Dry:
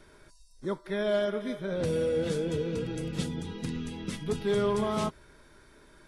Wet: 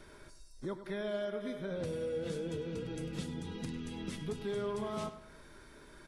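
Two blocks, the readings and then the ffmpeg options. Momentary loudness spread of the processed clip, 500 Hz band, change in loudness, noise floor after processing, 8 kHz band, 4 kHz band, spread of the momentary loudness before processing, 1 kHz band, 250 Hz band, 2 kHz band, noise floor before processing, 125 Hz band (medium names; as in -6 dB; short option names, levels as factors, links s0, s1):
19 LU, -8.5 dB, -8.0 dB, -56 dBFS, -7.5 dB, -7.5 dB, 9 LU, -8.5 dB, -7.5 dB, -7.5 dB, -58 dBFS, -7.5 dB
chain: -filter_complex "[0:a]acompressor=threshold=0.00891:ratio=2.5,asplit=2[s0][s1];[s1]adelay=101,lowpass=f=4300:p=1,volume=0.251,asplit=2[s2][s3];[s3]adelay=101,lowpass=f=4300:p=1,volume=0.42,asplit=2[s4][s5];[s5]adelay=101,lowpass=f=4300:p=1,volume=0.42,asplit=2[s6][s7];[s7]adelay=101,lowpass=f=4300:p=1,volume=0.42[s8];[s0][s2][s4][s6][s8]amix=inputs=5:normalize=0,volume=1.12"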